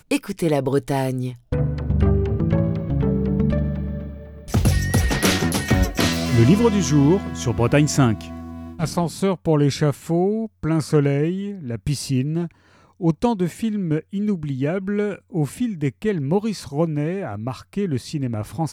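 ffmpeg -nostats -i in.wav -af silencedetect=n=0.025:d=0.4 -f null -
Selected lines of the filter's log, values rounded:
silence_start: 12.47
silence_end: 13.00 | silence_duration: 0.53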